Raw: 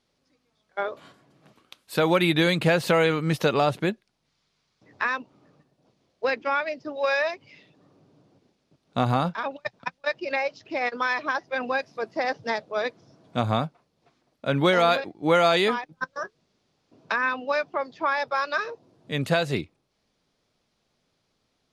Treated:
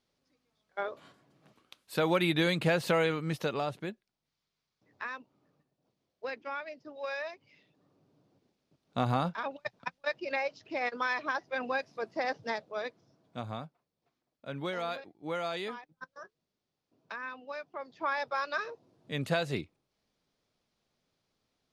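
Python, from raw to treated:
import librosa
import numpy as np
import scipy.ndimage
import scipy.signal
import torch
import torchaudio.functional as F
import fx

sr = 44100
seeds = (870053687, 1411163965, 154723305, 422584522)

y = fx.gain(x, sr, db=fx.line((2.95, -6.5), (3.86, -13.0), (7.29, -13.0), (9.12, -6.0), (12.38, -6.0), (13.57, -15.5), (17.66, -15.5), (18.08, -7.0)))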